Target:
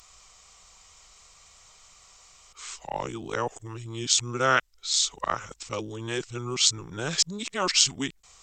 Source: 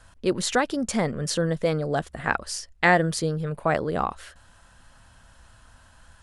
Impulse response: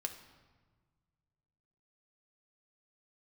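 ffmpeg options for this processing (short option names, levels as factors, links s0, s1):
-af "areverse,crystalizer=i=9:c=0,asetrate=32590,aresample=44100,volume=0.299"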